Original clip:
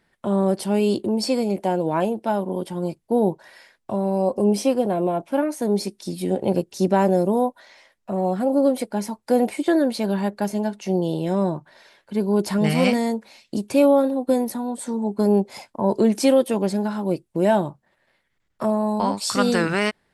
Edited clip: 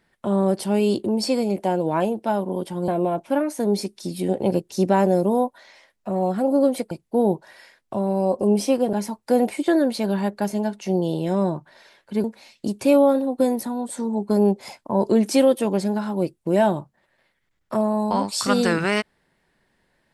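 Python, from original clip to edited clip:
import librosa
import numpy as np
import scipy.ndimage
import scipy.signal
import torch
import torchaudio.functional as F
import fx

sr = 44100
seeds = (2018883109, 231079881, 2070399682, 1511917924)

y = fx.edit(x, sr, fx.move(start_s=2.88, length_s=2.02, to_s=8.93),
    fx.cut(start_s=12.24, length_s=0.89), tone=tone)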